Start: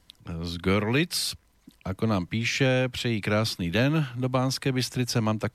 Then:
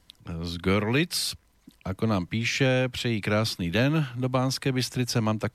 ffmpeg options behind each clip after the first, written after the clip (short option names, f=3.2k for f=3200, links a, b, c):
-af anull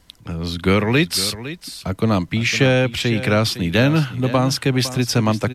-af "aecho=1:1:508:0.211,volume=7.5dB"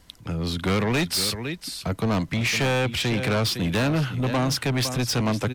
-af "asoftclip=type=tanh:threshold=-19.5dB"